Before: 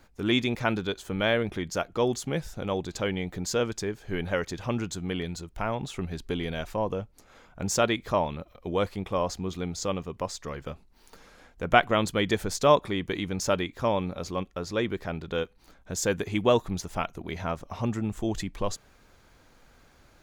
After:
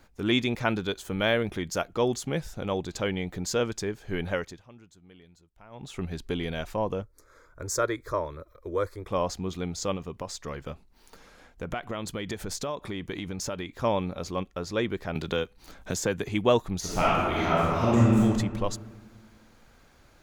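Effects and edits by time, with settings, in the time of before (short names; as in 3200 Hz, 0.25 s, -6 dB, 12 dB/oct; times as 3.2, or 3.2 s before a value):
0.81–1.92 high shelf 8100 Hz +5.5 dB
4.3–6.03 dip -22 dB, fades 0.33 s
7.02–9.08 fixed phaser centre 770 Hz, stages 6
9.96–13.78 compressor, threshold -29 dBFS
15.15–16.29 three-band squash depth 70%
16.79–18.18 reverb throw, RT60 1.8 s, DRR -9 dB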